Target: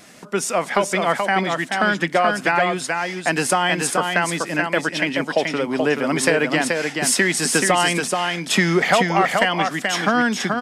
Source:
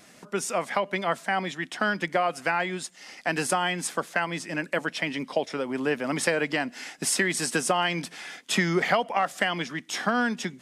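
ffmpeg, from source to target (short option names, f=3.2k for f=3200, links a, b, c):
-af "aecho=1:1:430:0.596,acontrast=77"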